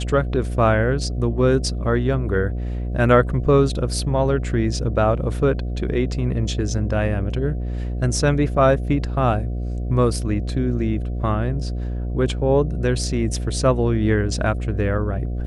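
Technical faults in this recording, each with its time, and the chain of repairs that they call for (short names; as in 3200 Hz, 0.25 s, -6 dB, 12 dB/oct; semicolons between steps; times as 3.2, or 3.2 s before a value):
buzz 60 Hz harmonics 12 -25 dBFS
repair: de-hum 60 Hz, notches 12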